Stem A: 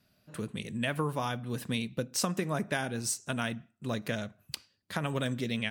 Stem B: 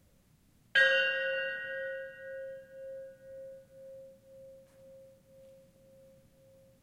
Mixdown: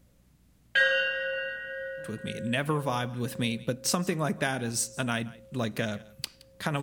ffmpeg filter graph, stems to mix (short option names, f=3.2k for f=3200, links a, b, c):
-filter_complex "[0:a]dynaudnorm=f=130:g=7:m=7dB,adelay=1700,volume=-4dB,asplit=2[a][b];[b]volume=-21dB[c];[1:a]aeval=exprs='val(0)+0.000562*(sin(2*PI*60*n/s)+sin(2*PI*2*60*n/s)/2+sin(2*PI*3*60*n/s)/3+sin(2*PI*4*60*n/s)/4+sin(2*PI*5*60*n/s)/5)':c=same,volume=1.5dB[d];[c]aecho=0:1:170:1[e];[a][d][e]amix=inputs=3:normalize=0"